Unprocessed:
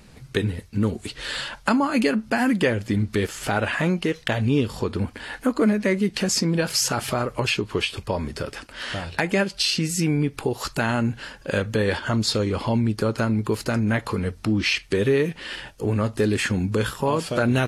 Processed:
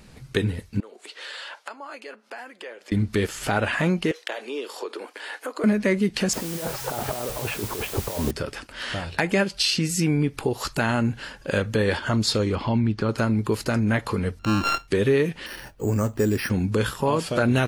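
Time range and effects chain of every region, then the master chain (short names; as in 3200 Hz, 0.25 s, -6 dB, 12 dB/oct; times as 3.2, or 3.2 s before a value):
0.8–2.92 high shelf 8200 Hz -10 dB + compressor 5:1, threshold -33 dBFS + HPF 420 Hz 24 dB/oct
4.11–5.64 steep high-pass 350 Hz + compressor 2:1, threshold -30 dBFS
6.33–8.31 EQ curve 180 Hz 0 dB, 750 Hz +8 dB, 5000 Hz -28 dB + negative-ratio compressor -29 dBFS + requantised 6-bit, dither triangular
12.55–13.09 LPF 4200 Hz + bell 500 Hz -5.5 dB 0.6 oct
14.39–14.88 sample sorter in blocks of 32 samples + decimation joined by straight lines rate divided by 4×
15.46–16.5 air absorption 340 m + careless resampling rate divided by 6×, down none, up hold
whole clip: dry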